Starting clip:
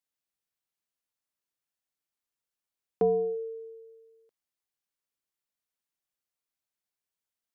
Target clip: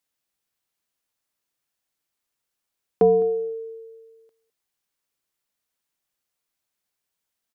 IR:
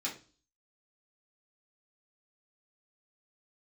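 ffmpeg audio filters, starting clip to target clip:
-af "aecho=1:1:209:0.112,volume=2.51"

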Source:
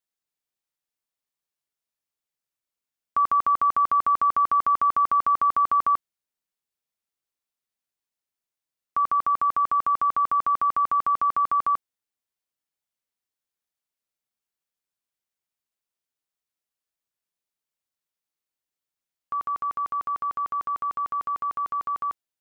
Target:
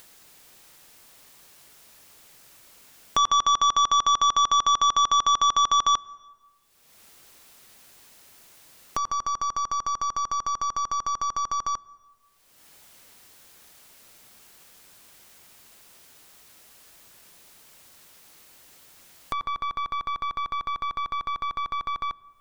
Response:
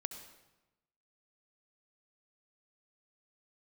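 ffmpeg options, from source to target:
-filter_complex "[0:a]aeval=exprs='0.158*(cos(1*acos(clip(val(0)/0.158,-1,1)))-cos(1*PI/2))+0.00398*(cos(2*acos(clip(val(0)/0.158,-1,1)))-cos(2*PI/2))+0.0708*(cos(3*acos(clip(val(0)/0.158,-1,1)))-cos(3*PI/2))+0.0355*(cos(5*acos(clip(val(0)/0.158,-1,1)))-cos(5*PI/2))+0.00631*(cos(6*acos(clip(val(0)/0.158,-1,1)))-cos(6*PI/2))':c=same,acompressor=mode=upward:threshold=0.0631:ratio=2.5,asplit=2[s0][s1];[1:a]atrim=start_sample=2205,asetrate=29547,aresample=44100,highshelf=f=2100:g=-12[s2];[s1][s2]afir=irnorm=-1:irlink=0,volume=0.224[s3];[s0][s3]amix=inputs=2:normalize=0"

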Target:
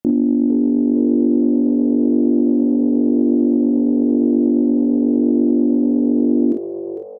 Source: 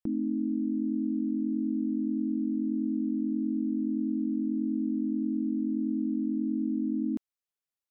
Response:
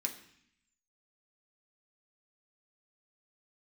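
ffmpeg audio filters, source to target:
-filter_complex "[0:a]bandreject=f=169:t=h:w=4,bandreject=f=338:t=h:w=4,bandreject=f=507:t=h:w=4,bandreject=f=676:t=h:w=4,bandreject=f=845:t=h:w=4,bandreject=f=1014:t=h:w=4,bandreject=f=1183:t=h:w=4,bandreject=f=1352:t=h:w=4,asplit=2[s0][s1];[s1]aecho=0:1:27|56:0.422|0.531[s2];[s0][s2]amix=inputs=2:normalize=0,acontrast=34,aeval=exprs='0.168*(cos(1*acos(clip(val(0)/0.168,-1,1)))-cos(1*PI/2))+0.0168*(cos(2*acos(clip(val(0)/0.168,-1,1)))-cos(2*PI/2))+0.00841*(cos(3*acos(clip(val(0)/0.168,-1,1)))-cos(3*PI/2))':c=same,lowshelf=f=88:g=-9.5,asplit=2[s3][s4];[s4]asplit=5[s5][s6][s7][s8][s9];[s5]adelay=498,afreqshift=92,volume=0.355[s10];[s6]adelay=996,afreqshift=184,volume=0.164[s11];[s7]adelay=1494,afreqshift=276,volume=0.075[s12];[s8]adelay=1992,afreqshift=368,volume=0.0347[s13];[s9]adelay=2490,afreqshift=460,volume=0.0158[s14];[s10][s11][s12][s13][s14]amix=inputs=5:normalize=0[s15];[s3][s15]amix=inputs=2:normalize=0,asetrate=48510,aresample=44100,equalizer=f=230:w=0.42:g=13,volume=0.794"

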